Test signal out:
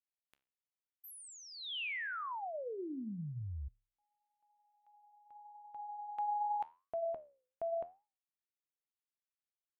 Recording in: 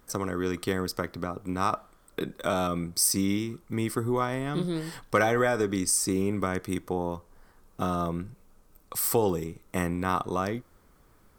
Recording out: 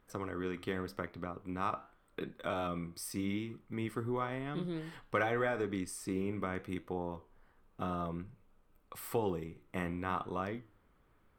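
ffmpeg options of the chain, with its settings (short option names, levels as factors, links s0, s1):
-af "flanger=delay=9.9:depth=7.1:regen=-78:speed=0.87:shape=triangular,highshelf=f=4000:t=q:w=1.5:g=-9.5,volume=0.596"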